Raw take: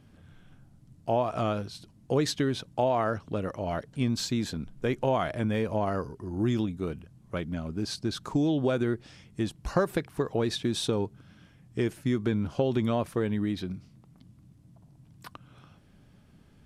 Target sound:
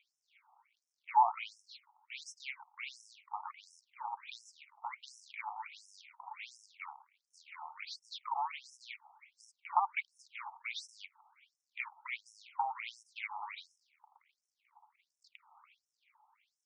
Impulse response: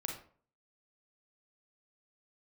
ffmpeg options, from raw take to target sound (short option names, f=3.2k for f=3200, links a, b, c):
-filter_complex "[0:a]acrusher=bits=2:mode=log:mix=0:aa=0.000001,asplit=3[a][b][c];[a]bandpass=f=300:t=q:w=8,volume=0dB[d];[b]bandpass=f=870:t=q:w=8,volume=-6dB[e];[c]bandpass=f=2.24k:t=q:w=8,volume=-9dB[f];[d][e][f]amix=inputs=3:normalize=0,afftfilt=real='re*between(b*sr/1024,920*pow(7500/920,0.5+0.5*sin(2*PI*1.4*pts/sr))/1.41,920*pow(7500/920,0.5+0.5*sin(2*PI*1.4*pts/sr))*1.41)':imag='im*between(b*sr/1024,920*pow(7500/920,0.5+0.5*sin(2*PI*1.4*pts/sr))/1.41,920*pow(7500/920,0.5+0.5*sin(2*PI*1.4*pts/sr))*1.41)':win_size=1024:overlap=0.75,volume=17dB"